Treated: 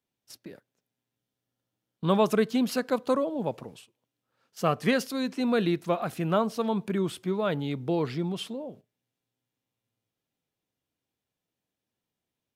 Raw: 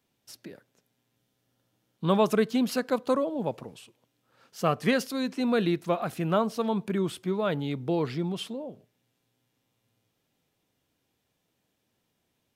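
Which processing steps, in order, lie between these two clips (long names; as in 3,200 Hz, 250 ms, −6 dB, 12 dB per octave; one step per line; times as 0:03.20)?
noise gate −48 dBFS, range −11 dB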